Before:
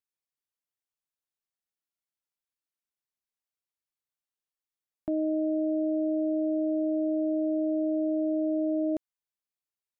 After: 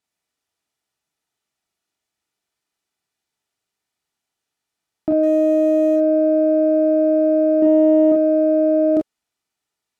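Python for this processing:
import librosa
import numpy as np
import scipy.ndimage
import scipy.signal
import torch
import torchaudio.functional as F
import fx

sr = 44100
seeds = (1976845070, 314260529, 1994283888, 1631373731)

p1 = fx.zero_step(x, sr, step_db=-48.0, at=(5.23, 5.96))
p2 = fx.low_shelf(p1, sr, hz=420.0, db=7.0, at=(7.62, 8.12))
p3 = np.clip(p2, -10.0 ** (-29.5 / 20.0), 10.0 ** (-29.5 / 20.0))
p4 = p2 + F.gain(torch.from_numpy(p3), -11.5).numpy()
p5 = fx.peak_eq(p4, sr, hz=550.0, db=3.5, octaves=1.4)
p6 = fx.notch_comb(p5, sr, f0_hz=540.0)
p7 = fx.room_early_taps(p6, sr, ms=(30, 43), db=(-5.5, -3.5))
p8 = np.interp(np.arange(len(p7)), np.arange(len(p7))[::2], p7[::2])
y = F.gain(torch.from_numpy(p8), 8.5).numpy()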